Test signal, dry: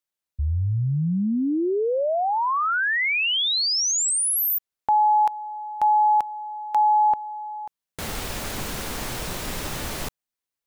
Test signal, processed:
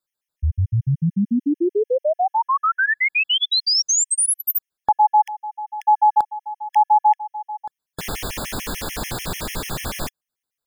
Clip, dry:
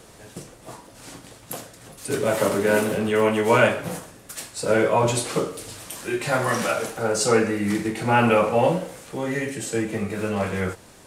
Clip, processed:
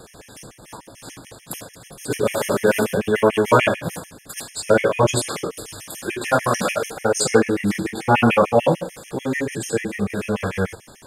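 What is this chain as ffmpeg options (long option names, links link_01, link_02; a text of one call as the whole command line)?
ffmpeg -i in.wav -af "afftfilt=real='re*gt(sin(2*PI*6.8*pts/sr)*(1-2*mod(floor(b*sr/1024/1700),2)),0)':imag='im*gt(sin(2*PI*6.8*pts/sr)*(1-2*mod(floor(b*sr/1024/1700),2)),0)':win_size=1024:overlap=0.75,volume=5.5dB" out.wav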